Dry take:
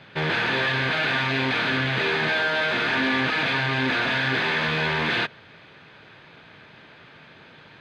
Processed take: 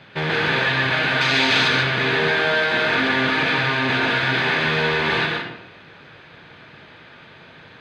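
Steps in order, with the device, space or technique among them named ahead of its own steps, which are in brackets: 1.21–1.68 bell 6500 Hz +13.5 dB 1.9 oct; bathroom (reverb RT60 0.85 s, pre-delay 0.114 s, DRR 1.5 dB); gain +1.5 dB

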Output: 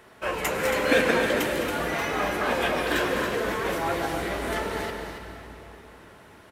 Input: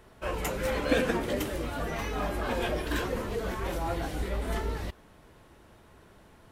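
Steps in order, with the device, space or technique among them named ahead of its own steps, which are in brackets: stadium PA (HPF 240 Hz 6 dB/oct; bell 1900 Hz +4 dB 1.1 oct; loudspeakers at several distances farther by 71 m -12 dB, 95 m -8 dB; reverb RT60 3.5 s, pre-delay 97 ms, DRR 6 dB); gain +4.5 dB

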